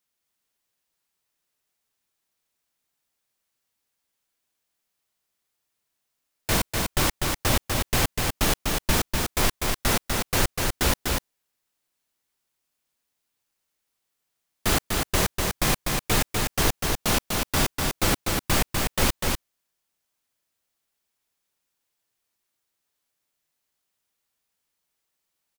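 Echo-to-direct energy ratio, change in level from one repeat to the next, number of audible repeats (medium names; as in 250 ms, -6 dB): -3.5 dB, no regular repeats, 1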